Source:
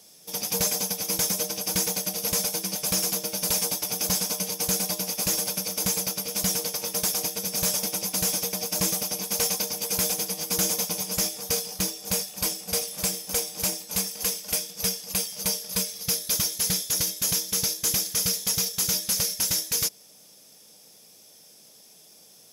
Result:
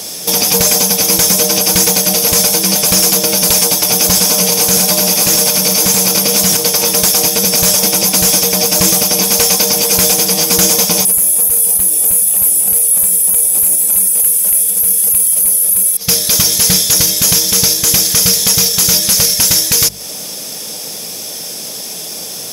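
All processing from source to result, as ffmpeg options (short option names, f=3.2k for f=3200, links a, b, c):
-filter_complex "[0:a]asettb=1/sr,asplit=3[a][b][c];[a]atrim=end=4.254[d];[b]atrim=start=4.25:end=6.57,asetpts=PTS-STARTPTS,afade=t=in:d=0.004:c=qsin,afade=t=out:st=2.316:d=0.004:c=qsin,highpass=81,acontrast=59,aecho=1:1:82:0.355,atrim=end_sample=102312[e];[c]atrim=start=6.566[f];[d][e]acrossfade=d=0.004:c1=hsin:c2=qsin[g];[g][f]acrossfade=d=0.004:c1=qsin:c2=hsin,asettb=1/sr,asplit=3[h][i][j];[h]atrim=end=11.054[k];[i]atrim=start=11.05:end=15.97,asetpts=PTS-STARTPTS,afade=t=in:d=0.004:c=qsin,afade=t=out:st=4.916:d=0.004:c=qsin,aeval=exprs='0.224*sin(PI/2*1.58*val(0)/0.224)':c=same,highshelf=f=7.5k:t=q:w=3:g=13.5[l];[j]atrim=start=15.966[m];[k][l]acrossfade=d=0.004:c1=hsin:c2=qsin[n];[n][m]acrossfade=d=0.004:c1=qsin:c2=hsin,bandreject=f=50:t=h:w=6,bandreject=f=100:t=h:w=6,bandreject=f=150:t=h:w=6,bandreject=f=200:t=h:w=6,acompressor=threshold=-33dB:ratio=4,alimiter=level_in=29dB:limit=-1dB:release=50:level=0:latency=1,volume=-1dB"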